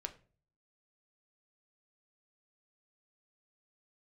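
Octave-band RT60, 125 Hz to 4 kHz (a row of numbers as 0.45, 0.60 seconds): 0.70, 0.55, 0.45, 0.35, 0.35, 0.30 seconds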